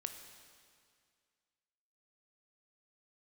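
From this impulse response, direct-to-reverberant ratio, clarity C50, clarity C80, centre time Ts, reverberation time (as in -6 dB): 6.0 dB, 7.5 dB, 8.5 dB, 33 ms, 2.1 s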